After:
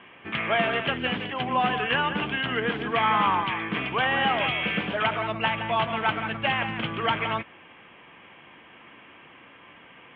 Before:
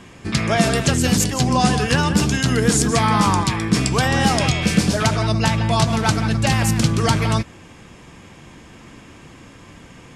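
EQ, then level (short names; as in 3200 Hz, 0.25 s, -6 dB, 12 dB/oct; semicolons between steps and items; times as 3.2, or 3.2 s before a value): HPF 940 Hz 6 dB/oct; Chebyshev low-pass 3200 Hz, order 6; 0.0 dB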